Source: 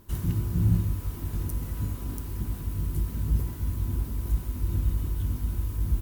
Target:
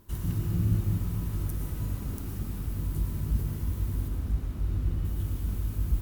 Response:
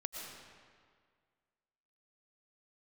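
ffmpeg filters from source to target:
-filter_complex "[0:a]asettb=1/sr,asplit=3[s0][s1][s2];[s0]atrim=end=4.084[s3];[s1]atrim=start=4.08:end=5.05,asetpts=PTS-STARTPTS,afade=t=in:d=0.004:c=qsin,afade=t=out:st=0.966:d=0.004:c=qsin,lowpass=f=3400:p=1[s4];[s2]atrim=start=5.046[s5];[s3][s4]acrossfade=d=0.004:c1=hsin:c2=qsin[s6];[s6][s5]acrossfade=d=0.004:c1=qsin:c2=hsin[s7];[1:a]atrim=start_sample=2205[s8];[s7][s8]afir=irnorm=-1:irlink=0"

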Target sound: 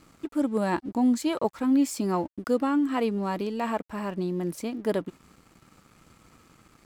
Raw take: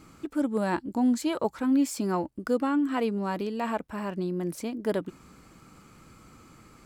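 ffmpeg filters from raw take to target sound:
-af "bandreject=f=1500:w=17,aeval=exprs='sgn(val(0))*max(abs(val(0))-0.00158,0)':c=same,volume=1.19"

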